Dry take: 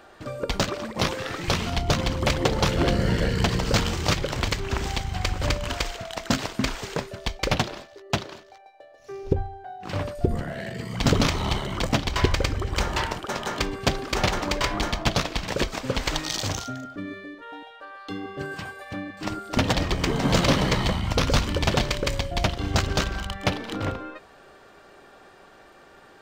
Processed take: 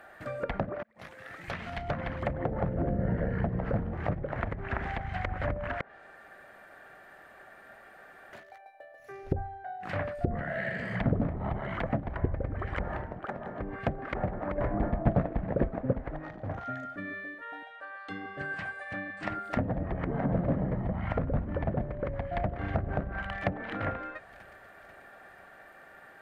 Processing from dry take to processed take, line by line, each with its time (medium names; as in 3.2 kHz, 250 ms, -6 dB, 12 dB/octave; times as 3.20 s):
0.83–2.72 s: fade in
5.81–8.33 s: room tone
10.48–10.96 s: reverb throw, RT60 2.2 s, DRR 0.5 dB
12.84–13.60 s: treble shelf 3.2 kHz +11.5 dB
14.58–15.93 s: gain +7 dB
17.64–19.29 s: elliptic low-pass 8.7 kHz
21.83–22.60 s: echo throw 490 ms, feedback 55%, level -13 dB
whole clip: tilt EQ +2 dB/octave; low-pass that closes with the level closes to 470 Hz, closed at -21 dBFS; FFT filter 190 Hz 0 dB, 400 Hz -7 dB, 670 Hz +2 dB, 1 kHz -6 dB, 1.8 kHz +3 dB, 2.9 kHz -11 dB, 5.4 kHz -19 dB, 7.7 kHz -15 dB, 11 kHz -4 dB